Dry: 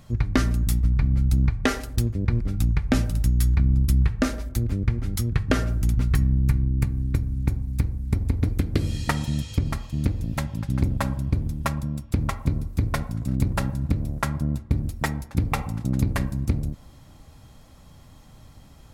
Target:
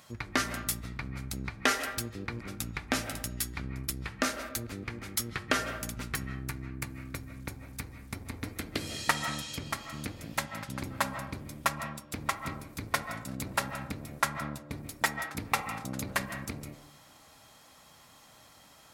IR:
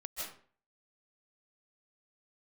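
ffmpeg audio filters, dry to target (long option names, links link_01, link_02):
-filter_complex "[0:a]asoftclip=type=tanh:threshold=-10.5dB,highpass=frequency=1500:poles=1,asplit=2[link_01][link_02];[1:a]atrim=start_sample=2205,lowpass=2400[link_03];[link_02][link_03]afir=irnorm=-1:irlink=0,volume=-5dB[link_04];[link_01][link_04]amix=inputs=2:normalize=0,volume=3dB"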